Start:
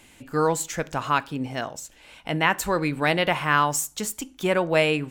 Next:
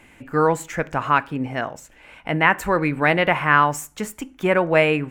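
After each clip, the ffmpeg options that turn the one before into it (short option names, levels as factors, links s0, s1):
-af "highshelf=f=2900:t=q:w=1.5:g=-9,volume=1.5"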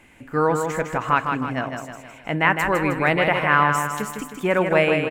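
-af "aecho=1:1:157|314|471|628|785|942:0.531|0.26|0.127|0.0625|0.0306|0.015,volume=0.794"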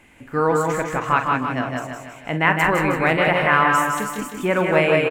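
-af "aecho=1:1:43.73|180.8:0.316|0.631"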